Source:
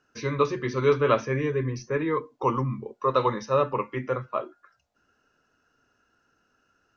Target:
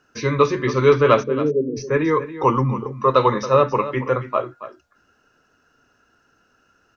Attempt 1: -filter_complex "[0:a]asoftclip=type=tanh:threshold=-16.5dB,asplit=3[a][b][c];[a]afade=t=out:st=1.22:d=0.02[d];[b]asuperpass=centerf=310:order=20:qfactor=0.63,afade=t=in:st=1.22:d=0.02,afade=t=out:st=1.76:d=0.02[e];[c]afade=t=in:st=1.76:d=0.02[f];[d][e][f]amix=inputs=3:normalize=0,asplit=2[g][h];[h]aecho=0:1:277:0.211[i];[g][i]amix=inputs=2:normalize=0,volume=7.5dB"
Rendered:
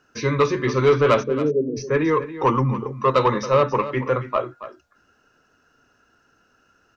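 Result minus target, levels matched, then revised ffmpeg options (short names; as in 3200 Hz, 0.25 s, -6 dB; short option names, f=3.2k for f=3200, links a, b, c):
soft clip: distortion +17 dB
-filter_complex "[0:a]asoftclip=type=tanh:threshold=-5.5dB,asplit=3[a][b][c];[a]afade=t=out:st=1.22:d=0.02[d];[b]asuperpass=centerf=310:order=20:qfactor=0.63,afade=t=in:st=1.22:d=0.02,afade=t=out:st=1.76:d=0.02[e];[c]afade=t=in:st=1.76:d=0.02[f];[d][e][f]amix=inputs=3:normalize=0,asplit=2[g][h];[h]aecho=0:1:277:0.211[i];[g][i]amix=inputs=2:normalize=0,volume=7.5dB"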